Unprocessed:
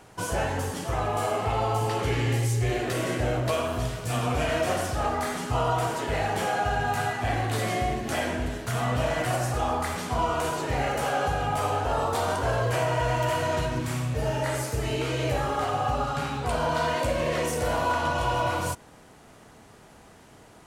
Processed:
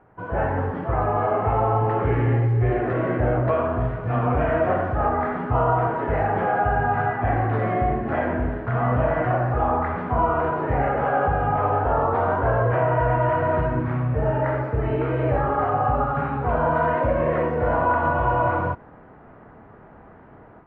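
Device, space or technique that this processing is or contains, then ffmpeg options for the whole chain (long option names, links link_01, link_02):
action camera in a waterproof case: -af "lowpass=frequency=1700:width=0.5412,lowpass=frequency=1700:width=1.3066,dynaudnorm=framelen=210:gausssize=3:maxgain=9.5dB,volume=-4dB" -ar 16000 -c:a aac -b:a 64k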